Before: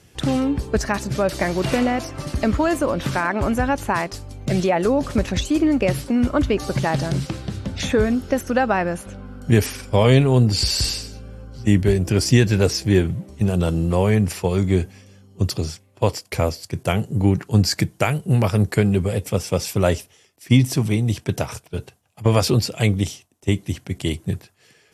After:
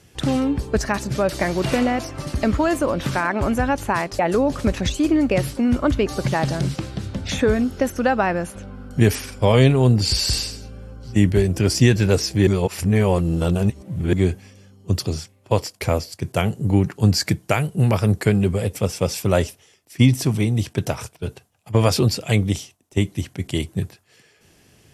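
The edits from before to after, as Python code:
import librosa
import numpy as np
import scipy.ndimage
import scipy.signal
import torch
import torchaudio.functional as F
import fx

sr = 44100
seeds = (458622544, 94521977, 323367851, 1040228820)

y = fx.edit(x, sr, fx.cut(start_s=4.19, length_s=0.51),
    fx.reverse_span(start_s=12.98, length_s=1.66), tone=tone)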